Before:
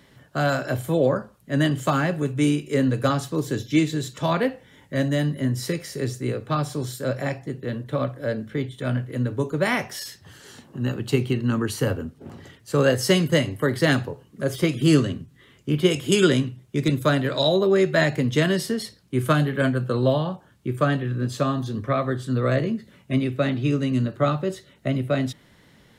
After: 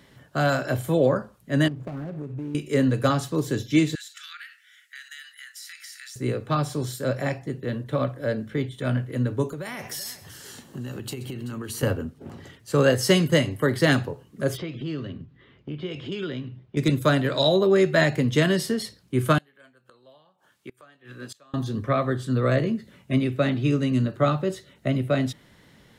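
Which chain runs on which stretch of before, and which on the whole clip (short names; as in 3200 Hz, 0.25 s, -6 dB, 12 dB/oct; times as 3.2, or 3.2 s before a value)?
1.68–2.55 median filter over 41 samples + high shelf 2000 Hz -10.5 dB + compressor, threshold -30 dBFS
3.95–6.16 steep high-pass 1300 Hz 96 dB/oct + compressor 10:1, threshold -37 dBFS
9.49–11.83 high shelf 8200 Hz +11.5 dB + compressor 16:1, threshold -29 dBFS + tapped delay 0.129/0.383 s -17.5/-16 dB
14.57–16.77 LPF 4300 Hz 24 dB/oct + compressor 2.5:1, threshold -34 dBFS + mismatched tape noise reduction decoder only
19.38–21.54 HPF 1100 Hz 6 dB/oct + flipped gate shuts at -27 dBFS, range -25 dB
whole clip: dry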